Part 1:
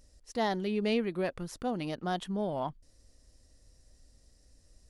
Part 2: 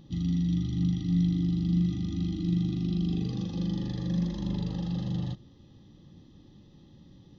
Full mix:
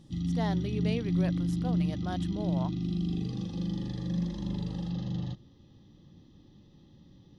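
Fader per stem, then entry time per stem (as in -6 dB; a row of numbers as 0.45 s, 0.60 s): -5.0 dB, -2.5 dB; 0.00 s, 0.00 s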